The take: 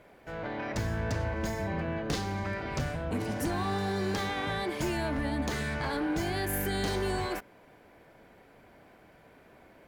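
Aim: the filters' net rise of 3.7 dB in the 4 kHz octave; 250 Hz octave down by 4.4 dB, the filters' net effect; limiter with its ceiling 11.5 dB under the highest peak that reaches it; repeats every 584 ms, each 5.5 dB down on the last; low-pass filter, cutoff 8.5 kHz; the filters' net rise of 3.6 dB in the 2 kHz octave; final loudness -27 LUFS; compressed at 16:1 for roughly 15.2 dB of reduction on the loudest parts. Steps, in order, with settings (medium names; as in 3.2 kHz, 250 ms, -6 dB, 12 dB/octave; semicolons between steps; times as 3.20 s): low-pass 8.5 kHz; peaking EQ 250 Hz -6.5 dB; peaking EQ 2 kHz +4 dB; peaking EQ 4 kHz +3.5 dB; compression 16:1, threshold -43 dBFS; peak limiter -43 dBFS; feedback delay 584 ms, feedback 53%, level -5.5 dB; trim +23.5 dB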